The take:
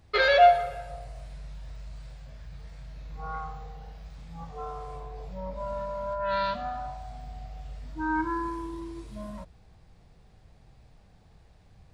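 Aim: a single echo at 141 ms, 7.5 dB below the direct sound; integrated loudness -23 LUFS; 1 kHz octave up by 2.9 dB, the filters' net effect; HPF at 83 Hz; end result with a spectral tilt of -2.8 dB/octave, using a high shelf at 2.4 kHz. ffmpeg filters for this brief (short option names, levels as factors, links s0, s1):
-af "highpass=83,equalizer=f=1000:t=o:g=6,highshelf=f=2400:g=-7.5,aecho=1:1:141:0.422,volume=1.26"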